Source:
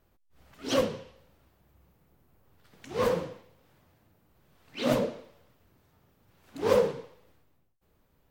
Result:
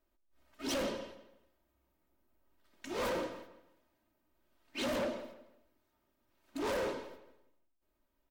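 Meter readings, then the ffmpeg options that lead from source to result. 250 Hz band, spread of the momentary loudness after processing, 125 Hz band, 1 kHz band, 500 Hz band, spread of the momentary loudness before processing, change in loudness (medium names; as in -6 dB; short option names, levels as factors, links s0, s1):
-6.5 dB, 16 LU, -13.5 dB, -5.5 dB, -9.5 dB, 19 LU, -8.5 dB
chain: -filter_complex "[0:a]agate=range=0.251:threshold=0.00224:ratio=16:detection=peak,equalizer=f=92:w=0.98:g=-10,aecho=1:1:3.2:0.67,alimiter=limit=0.119:level=0:latency=1,asoftclip=type=hard:threshold=0.0237,asplit=2[s0][s1];[s1]adelay=165,lowpass=f=4000:p=1,volume=0.211,asplit=2[s2][s3];[s3]adelay=165,lowpass=f=4000:p=1,volume=0.32,asplit=2[s4][s5];[s5]adelay=165,lowpass=f=4000:p=1,volume=0.32[s6];[s2][s4][s6]amix=inputs=3:normalize=0[s7];[s0][s7]amix=inputs=2:normalize=0"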